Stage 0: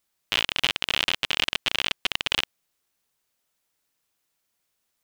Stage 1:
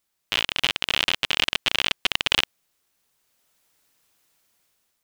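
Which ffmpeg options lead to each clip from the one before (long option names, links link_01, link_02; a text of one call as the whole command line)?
ffmpeg -i in.wav -af "dynaudnorm=framelen=290:gausssize=5:maxgain=9.5dB" out.wav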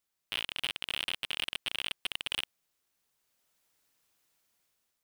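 ffmpeg -i in.wav -af "asoftclip=type=tanh:threshold=-12dB,volume=-7.5dB" out.wav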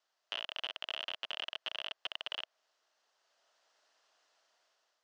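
ffmpeg -i in.wav -filter_complex "[0:a]asplit=2[link_01][link_02];[link_02]highpass=frequency=720:poles=1,volume=12dB,asoftclip=type=tanh:threshold=-19.5dB[link_03];[link_01][link_03]amix=inputs=2:normalize=0,lowpass=frequency=4300:poles=1,volume=-6dB,highpass=420,equalizer=frequency=640:width_type=q:width=4:gain=8,equalizer=frequency=2300:width_type=q:width=4:gain=-9,equalizer=frequency=3700:width_type=q:width=4:gain=-4,lowpass=frequency=6000:width=0.5412,lowpass=frequency=6000:width=1.3066,acrossover=split=710|3200[link_04][link_05][link_06];[link_04]acompressor=threshold=-55dB:ratio=4[link_07];[link_05]acompressor=threshold=-40dB:ratio=4[link_08];[link_06]acompressor=threshold=-48dB:ratio=4[link_09];[link_07][link_08][link_09]amix=inputs=3:normalize=0,volume=2.5dB" out.wav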